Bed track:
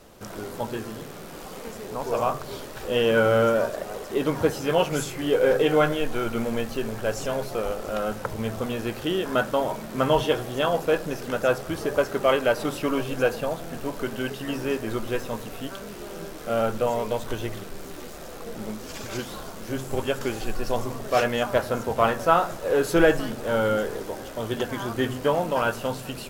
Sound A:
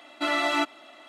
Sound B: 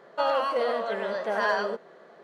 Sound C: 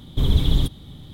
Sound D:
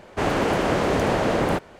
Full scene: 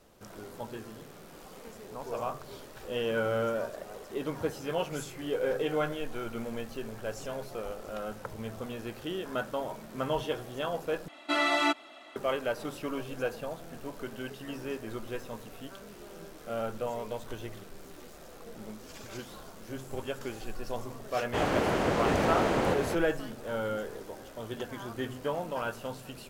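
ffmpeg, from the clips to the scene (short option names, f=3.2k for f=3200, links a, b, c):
-filter_complex "[0:a]volume=-10dB[a];[4:a]aecho=1:1:723:0.562[b];[a]asplit=2[c][d];[c]atrim=end=11.084[e];[1:a]atrim=end=1.08,asetpts=PTS-STARTPTS,volume=-1.5dB[f];[d]atrim=start=12.156[g];[b]atrim=end=1.79,asetpts=PTS-STARTPTS,volume=-6.5dB,afade=t=in:d=0.004:c=hsin,afade=t=out:st=1.786:d=0.004:c=hsin,adelay=933156S[h];[e][f]acrossfade=d=0.004:c1=hsin:c2=hsin[i];[i][g]acrossfade=d=0.004:c1=hsin:c2=hsin[j];[j][h]amix=inputs=2:normalize=0"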